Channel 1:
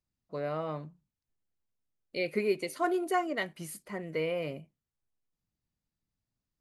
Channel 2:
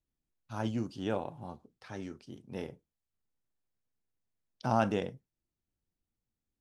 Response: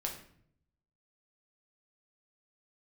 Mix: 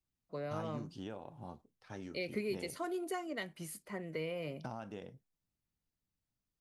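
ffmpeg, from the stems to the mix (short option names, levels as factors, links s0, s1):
-filter_complex "[0:a]acrossover=split=270|3000[s0][s1][s2];[s1]acompressor=threshold=0.0178:ratio=6[s3];[s0][s3][s2]amix=inputs=3:normalize=0,volume=0.668[s4];[1:a]agate=range=0.447:threshold=0.00282:ratio=16:detection=peak,acompressor=threshold=0.0141:ratio=12,volume=0.708[s5];[s4][s5]amix=inputs=2:normalize=0"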